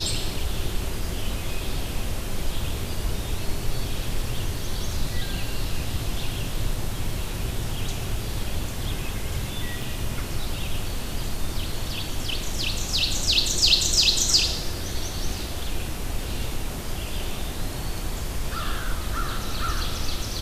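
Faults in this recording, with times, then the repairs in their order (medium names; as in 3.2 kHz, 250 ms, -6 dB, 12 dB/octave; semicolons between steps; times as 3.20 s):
9.82 s: dropout 3.8 ms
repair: interpolate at 9.82 s, 3.8 ms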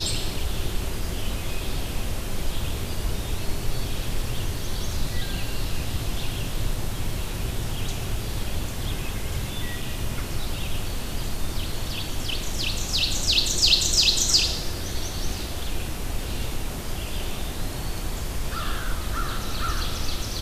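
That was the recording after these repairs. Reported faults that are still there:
nothing left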